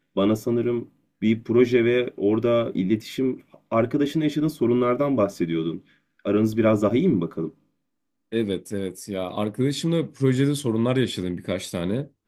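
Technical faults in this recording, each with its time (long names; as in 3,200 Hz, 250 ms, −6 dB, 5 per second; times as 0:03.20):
0:06.90–0:06.91: drop-out 5 ms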